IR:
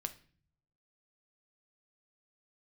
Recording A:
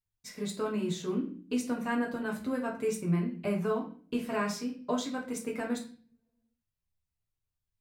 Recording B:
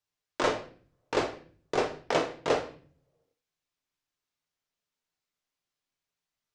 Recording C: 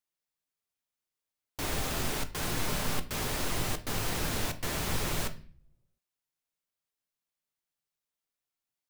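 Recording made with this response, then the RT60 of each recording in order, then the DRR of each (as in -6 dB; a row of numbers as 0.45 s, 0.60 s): C; 0.45 s, 0.45 s, 0.45 s; -1.5 dB, 2.5 dB, 7.5 dB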